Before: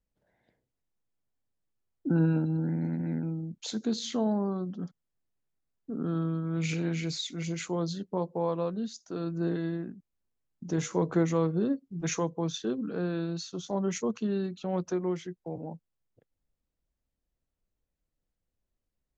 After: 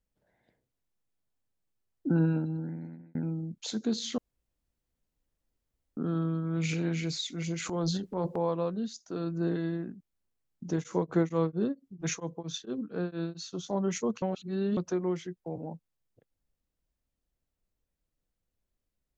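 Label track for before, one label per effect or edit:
2.120000	3.150000	fade out
4.180000	5.970000	room tone
7.600000	8.360000	transient shaper attack -5 dB, sustain +12 dB
10.730000	13.520000	beating tremolo nulls at 4.4 Hz
14.220000	14.770000	reverse

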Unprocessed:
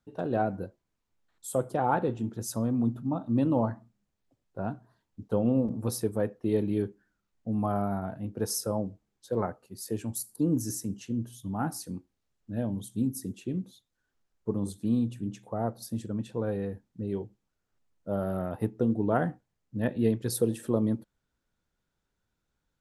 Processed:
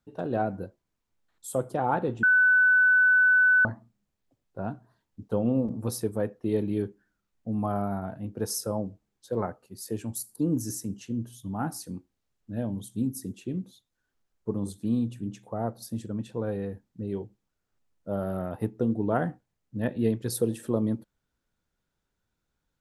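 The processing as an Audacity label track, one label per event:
2.230000	3.650000	bleep 1500 Hz -16.5 dBFS

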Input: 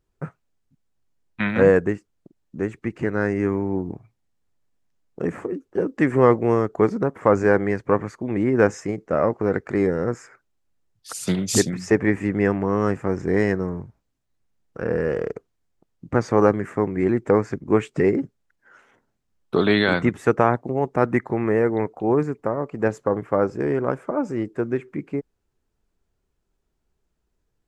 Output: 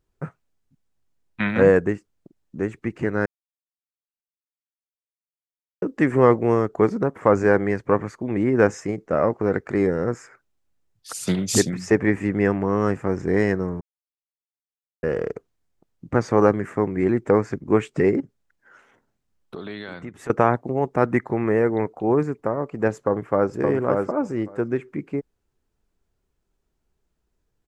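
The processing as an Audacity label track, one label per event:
3.260000	5.820000	mute
13.810000	15.030000	mute
18.200000	20.300000	compressor 2.5:1, threshold -39 dBFS
22.960000	23.540000	echo throw 0.57 s, feedback 10%, level -3.5 dB

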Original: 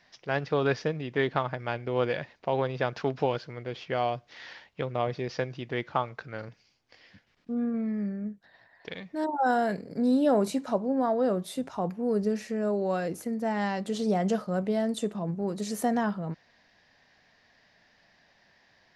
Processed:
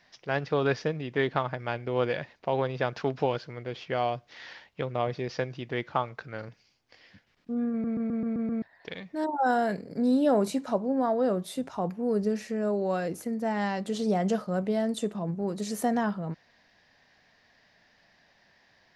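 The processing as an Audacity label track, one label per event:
7.710000	7.710000	stutter in place 0.13 s, 7 plays

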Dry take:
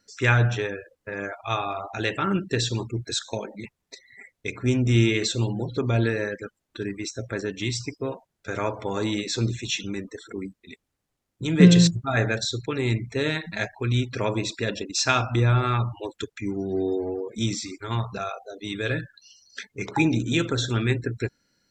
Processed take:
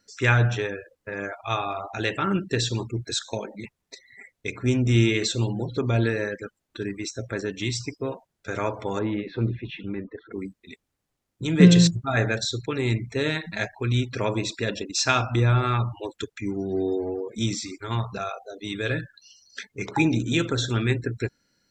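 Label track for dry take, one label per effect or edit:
8.990000	10.330000	Gaussian blur sigma 3.6 samples

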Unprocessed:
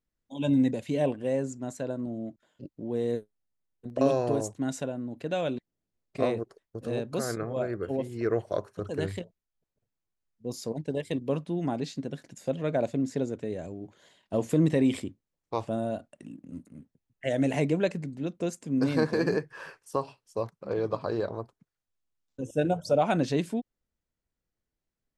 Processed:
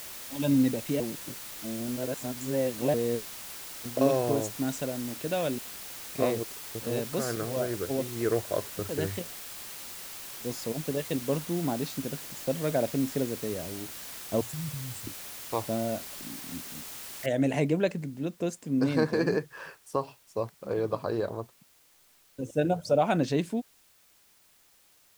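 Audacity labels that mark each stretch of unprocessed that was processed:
1.000000	2.940000	reverse
14.410000	15.070000	Chebyshev band-stop 120–6700 Hz, order 3
17.260000	17.260000	noise floor step -42 dB -62 dB

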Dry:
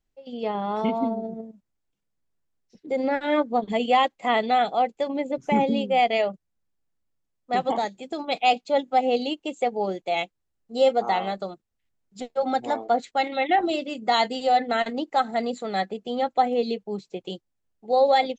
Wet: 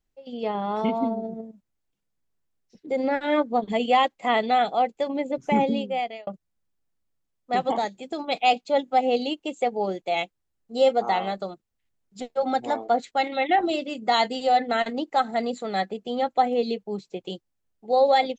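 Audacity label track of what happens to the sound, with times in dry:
5.650000	6.270000	fade out

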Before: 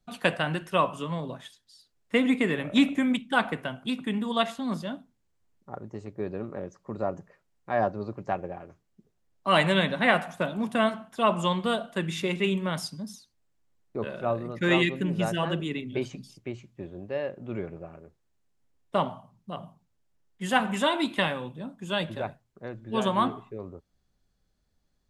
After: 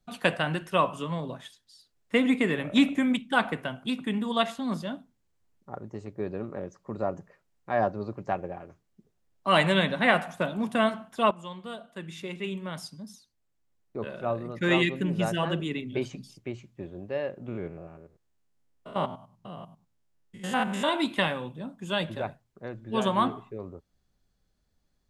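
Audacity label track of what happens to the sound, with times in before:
11.310000	15.080000	fade in, from -16 dB
17.480000	20.890000	stepped spectrum every 0.1 s

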